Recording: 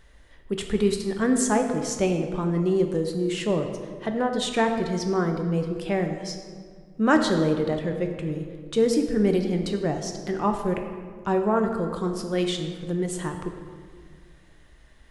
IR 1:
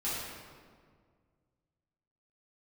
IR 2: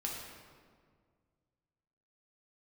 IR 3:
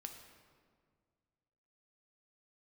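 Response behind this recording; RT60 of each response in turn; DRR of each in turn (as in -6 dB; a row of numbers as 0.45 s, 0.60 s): 3; 1.9 s, 1.9 s, 1.9 s; -11.0 dB, -2.5 dB, 4.0 dB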